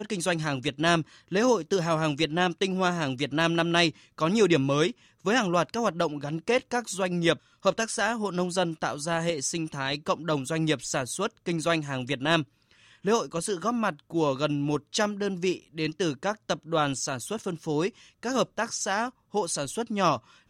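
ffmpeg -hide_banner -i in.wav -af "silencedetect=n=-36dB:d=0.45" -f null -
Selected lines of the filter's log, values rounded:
silence_start: 12.43
silence_end: 13.05 | silence_duration: 0.61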